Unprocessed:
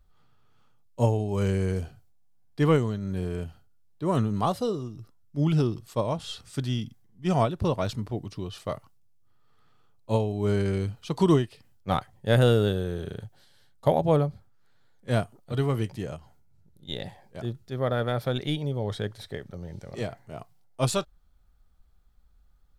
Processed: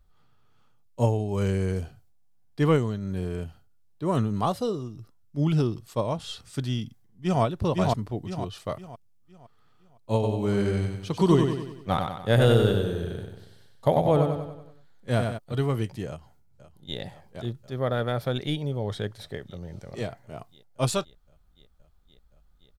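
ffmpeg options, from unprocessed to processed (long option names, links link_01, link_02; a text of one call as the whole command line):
ffmpeg -i in.wav -filter_complex "[0:a]asplit=2[link_01][link_02];[link_02]afade=type=in:start_time=6.83:duration=0.01,afade=type=out:start_time=7.42:duration=0.01,aecho=0:1:510|1020|1530|2040|2550:0.891251|0.311938|0.109178|0.0382124|0.0133743[link_03];[link_01][link_03]amix=inputs=2:normalize=0,asplit=3[link_04][link_05][link_06];[link_04]afade=type=out:start_time=10.22:duration=0.02[link_07];[link_05]aecho=1:1:94|188|282|376|470|564:0.562|0.281|0.141|0.0703|0.0351|0.0176,afade=type=in:start_time=10.22:duration=0.02,afade=type=out:start_time=15.37:duration=0.02[link_08];[link_06]afade=type=in:start_time=15.37:duration=0.02[link_09];[link_07][link_08][link_09]amix=inputs=3:normalize=0,asplit=2[link_10][link_11];[link_11]afade=type=in:start_time=16.07:duration=0.01,afade=type=out:start_time=16.98:duration=0.01,aecho=0:1:520|1040|1560|2080|2600|3120|3640|4160|4680|5200|5720|6240:0.199526|0.169597|0.144158|0.122534|0.104154|0.0885308|0.0752512|0.0639635|0.054369|0.0462137|0.0392816|0.0333894[link_12];[link_10][link_12]amix=inputs=2:normalize=0" out.wav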